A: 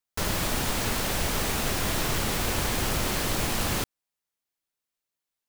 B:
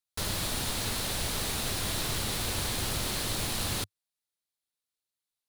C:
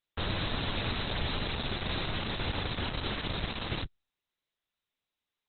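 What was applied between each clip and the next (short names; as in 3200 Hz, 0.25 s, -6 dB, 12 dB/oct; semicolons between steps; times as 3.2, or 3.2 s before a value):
fifteen-band EQ 100 Hz +5 dB, 4000 Hz +8 dB, 10000 Hz +7 dB; gain -7 dB
stuck buffer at 4.89, times 8; gain +2.5 dB; Opus 8 kbps 48000 Hz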